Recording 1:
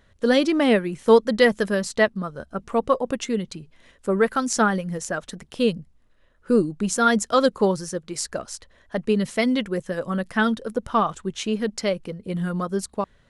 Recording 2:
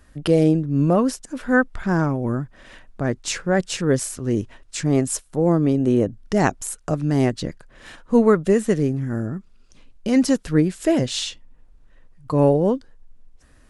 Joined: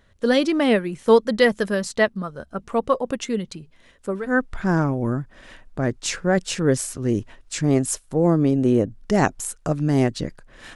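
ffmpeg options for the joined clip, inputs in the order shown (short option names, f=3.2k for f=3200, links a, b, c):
-filter_complex "[0:a]apad=whole_dur=10.75,atrim=end=10.75,atrim=end=4.42,asetpts=PTS-STARTPTS[a];[1:a]atrim=start=1.26:end=7.97,asetpts=PTS-STARTPTS[b];[a][b]acrossfade=d=0.38:c1=qua:c2=qua"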